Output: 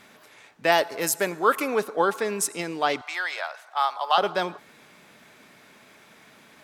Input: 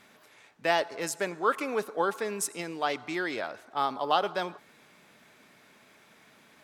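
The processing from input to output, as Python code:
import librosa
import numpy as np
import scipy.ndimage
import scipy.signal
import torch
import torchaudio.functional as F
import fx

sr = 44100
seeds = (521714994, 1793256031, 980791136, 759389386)

y = fx.peak_eq(x, sr, hz=13000.0, db=14.0, octaves=0.59, at=(0.72, 1.68))
y = fx.highpass(y, sr, hz=700.0, slope=24, at=(3.01, 4.18))
y = y * librosa.db_to_amplitude(5.5)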